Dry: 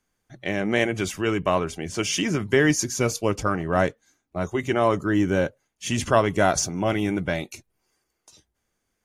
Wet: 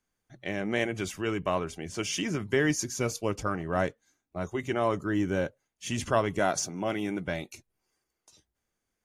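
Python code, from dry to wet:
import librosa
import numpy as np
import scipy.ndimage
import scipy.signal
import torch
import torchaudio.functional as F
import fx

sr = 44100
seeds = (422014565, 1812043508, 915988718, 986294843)

y = fx.highpass(x, sr, hz=150.0, slope=12, at=(6.39, 7.27))
y = F.gain(torch.from_numpy(y), -6.5).numpy()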